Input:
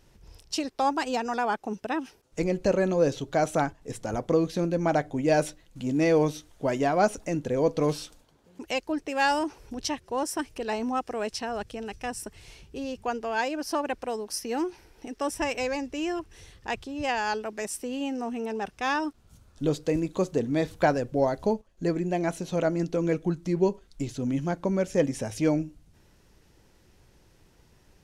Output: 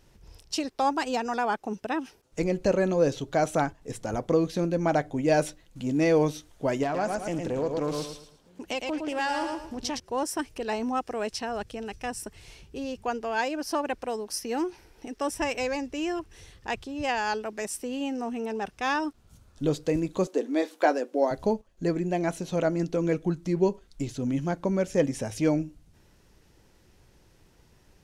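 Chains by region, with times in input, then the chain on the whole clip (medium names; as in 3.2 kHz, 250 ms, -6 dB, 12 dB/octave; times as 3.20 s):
6.83–10.00 s: feedback delay 111 ms, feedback 31%, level -6 dB + compression 2.5:1, threshold -26 dBFS + loudspeaker Doppler distortion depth 0.19 ms
20.27–21.31 s: elliptic high-pass 270 Hz, stop band 60 dB + doubling 16 ms -11.5 dB
whole clip: none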